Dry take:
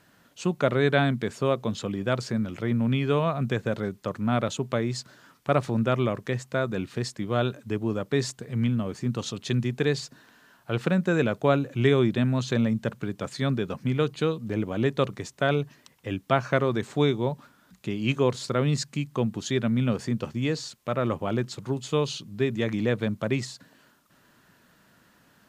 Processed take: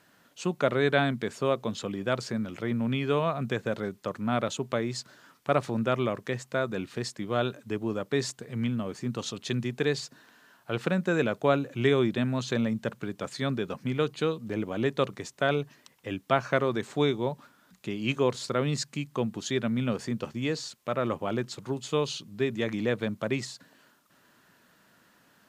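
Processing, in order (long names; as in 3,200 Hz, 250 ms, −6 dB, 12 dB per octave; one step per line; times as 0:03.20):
low-shelf EQ 130 Hz −10 dB
level −1 dB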